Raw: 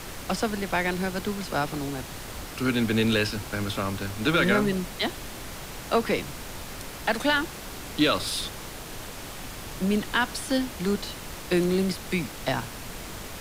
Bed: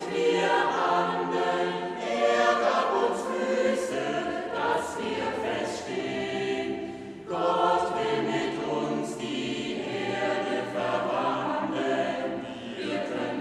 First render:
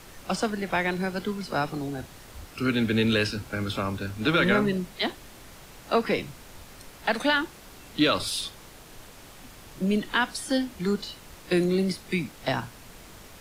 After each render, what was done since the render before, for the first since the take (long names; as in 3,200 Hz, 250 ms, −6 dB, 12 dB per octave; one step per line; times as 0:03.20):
noise reduction from a noise print 9 dB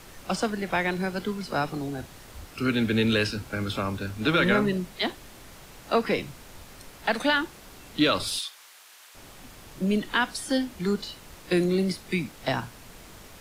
0:08.39–0:09.15: high-pass filter 1,200 Hz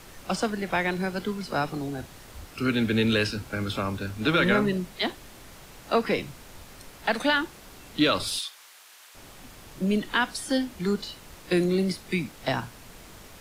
no processing that can be heard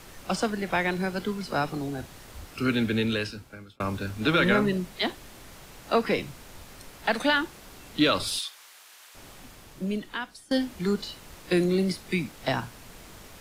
0:02.72–0:03.80: fade out
0:09.33–0:10.51: fade out, to −19.5 dB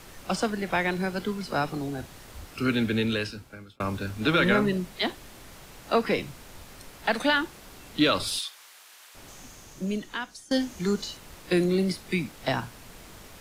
0:09.28–0:11.17: parametric band 6,400 Hz +10.5 dB 0.36 octaves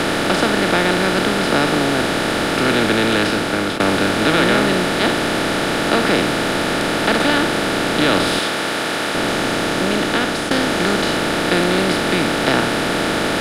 compressor on every frequency bin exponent 0.2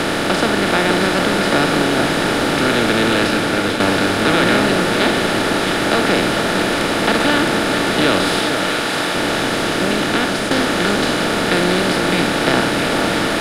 echo with a time of its own for lows and highs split 1,500 Hz, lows 450 ms, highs 665 ms, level −6.5 dB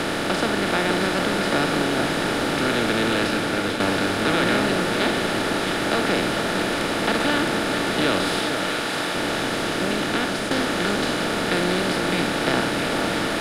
level −6 dB